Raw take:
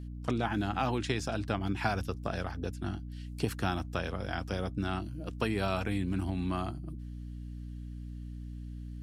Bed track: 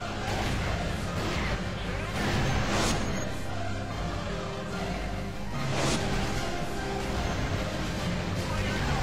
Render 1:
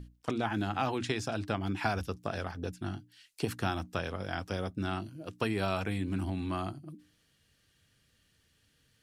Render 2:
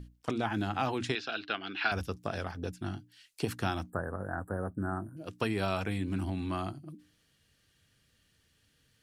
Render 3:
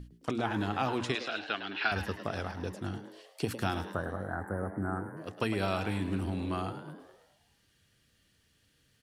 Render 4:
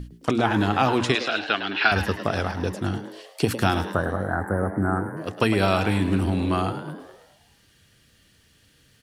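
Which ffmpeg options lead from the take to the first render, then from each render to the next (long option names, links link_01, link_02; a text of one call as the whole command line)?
ffmpeg -i in.wav -af "bandreject=frequency=60:width_type=h:width=6,bandreject=frequency=120:width_type=h:width=6,bandreject=frequency=180:width_type=h:width=6,bandreject=frequency=240:width_type=h:width=6,bandreject=frequency=300:width_type=h:width=6" out.wav
ffmpeg -i in.wav -filter_complex "[0:a]asettb=1/sr,asplit=3[link_01][link_02][link_03];[link_01]atrim=end=1.154[link_04];[link_02]atrim=start=1.15:end=1.92,asetpts=PTS-STARTPTS,afade=type=in:duration=0.004:curve=qsin,afade=type=out:start_time=0.766:duration=0.004:curve=qsin,highpass=400,equalizer=frequency=570:width_type=q:width=4:gain=-7,equalizer=frequency=920:width_type=q:width=4:gain=-9,equalizer=frequency=1500:width_type=q:width=4:gain=7,equalizer=frequency=2800:width_type=q:width=4:gain=9,equalizer=frequency=4000:width_type=q:width=4:gain=10,lowpass=frequency=4500:width=0.5412,lowpass=frequency=4500:width=1.3066[link_05];[link_03]atrim=start=1.916[link_06];[link_04][link_05]acrossfade=duration=0.004:curve1=hsin:curve2=qsin[link_07];[link_07][link_06]acrossfade=duration=0.004:curve1=qsin:curve2=hsin,asettb=1/sr,asplit=3[link_08][link_09][link_10];[link_08]atrim=end=3.904[link_11];[link_09]atrim=start=3.9:end=5.17,asetpts=PTS-STARTPTS,afade=type=in:duration=0.004:curve=qsin,afade=type=out:start_time=1.266:duration=0.004:curve=qsin,asuperstop=centerf=3800:order=20:qfactor=0.64[link_12];[link_10]atrim=start=5.166[link_13];[link_11][link_12]acrossfade=duration=0.004:curve1=hsin:curve2=qsin[link_14];[link_14][link_13]acrossfade=duration=0.004:curve1=qsin:curve2=hsin" out.wav
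ffmpeg -i in.wav -filter_complex "[0:a]asplit=7[link_01][link_02][link_03][link_04][link_05][link_06][link_07];[link_02]adelay=106,afreqshift=110,volume=-11.5dB[link_08];[link_03]adelay=212,afreqshift=220,volume=-16.9dB[link_09];[link_04]adelay=318,afreqshift=330,volume=-22.2dB[link_10];[link_05]adelay=424,afreqshift=440,volume=-27.6dB[link_11];[link_06]adelay=530,afreqshift=550,volume=-32.9dB[link_12];[link_07]adelay=636,afreqshift=660,volume=-38.3dB[link_13];[link_01][link_08][link_09][link_10][link_11][link_12][link_13]amix=inputs=7:normalize=0" out.wav
ffmpeg -i in.wav -af "volume=10.5dB" out.wav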